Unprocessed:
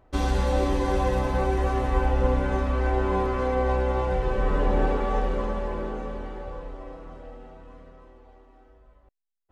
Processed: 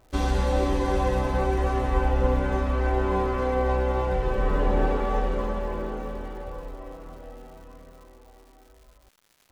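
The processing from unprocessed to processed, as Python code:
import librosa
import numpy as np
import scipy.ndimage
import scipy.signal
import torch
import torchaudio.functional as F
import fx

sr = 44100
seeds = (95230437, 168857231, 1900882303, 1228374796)

y = fx.dmg_crackle(x, sr, seeds[0], per_s=290.0, level_db=-46.0)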